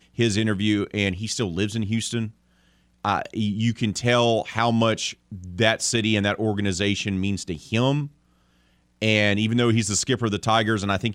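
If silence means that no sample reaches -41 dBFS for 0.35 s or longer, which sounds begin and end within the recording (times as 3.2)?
3.05–8.08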